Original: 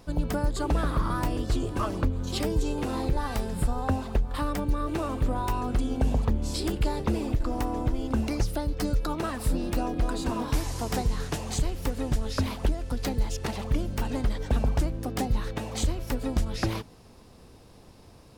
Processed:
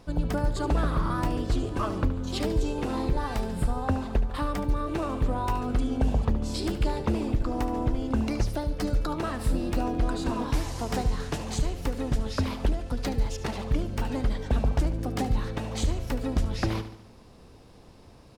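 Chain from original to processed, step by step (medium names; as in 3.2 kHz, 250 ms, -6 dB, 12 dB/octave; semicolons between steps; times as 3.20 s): treble shelf 8.6 kHz -8.5 dB; feedback delay 73 ms, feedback 51%, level -12.5 dB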